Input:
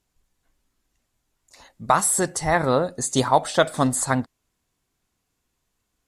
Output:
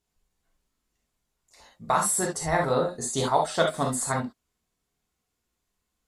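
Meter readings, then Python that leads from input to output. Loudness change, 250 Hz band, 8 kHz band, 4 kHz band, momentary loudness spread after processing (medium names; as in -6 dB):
-4.5 dB, -6.5 dB, -4.0 dB, -4.0 dB, 5 LU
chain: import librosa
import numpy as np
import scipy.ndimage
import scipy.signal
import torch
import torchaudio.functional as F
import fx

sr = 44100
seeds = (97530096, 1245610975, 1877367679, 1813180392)

y = fx.rev_gated(x, sr, seeds[0], gate_ms=90, shape='flat', drr_db=-0.5)
y = F.gain(torch.from_numpy(y), -7.5).numpy()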